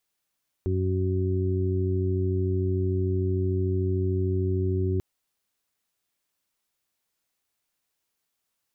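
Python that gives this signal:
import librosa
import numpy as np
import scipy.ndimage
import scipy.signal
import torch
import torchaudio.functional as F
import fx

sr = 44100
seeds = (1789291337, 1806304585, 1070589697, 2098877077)

y = fx.additive_steady(sr, length_s=4.34, hz=93.4, level_db=-24, upper_db=(-10.0, -10.0, -4.5))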